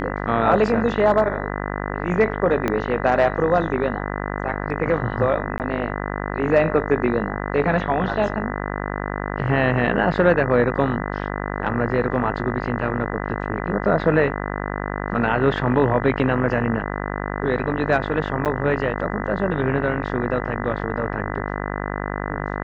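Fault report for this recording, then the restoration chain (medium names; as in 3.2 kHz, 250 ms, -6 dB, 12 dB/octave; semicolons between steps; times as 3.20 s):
buzz 50 Hz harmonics 40 -27 dBFS
2.68 s: pop -9 dBFS
5.58–5.60 s: dropout 18 ms
18.45–18.46 s: dropout 8.4 ms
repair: de-click; de-hum 50 Hz, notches 40; interpolate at 5.58 s, 18 ms; interpolate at 18.45 s, 8.4 ms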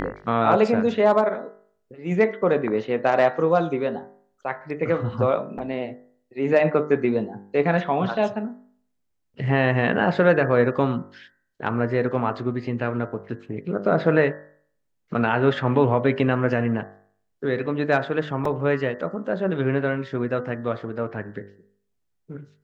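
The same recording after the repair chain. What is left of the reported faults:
2.68 s: pop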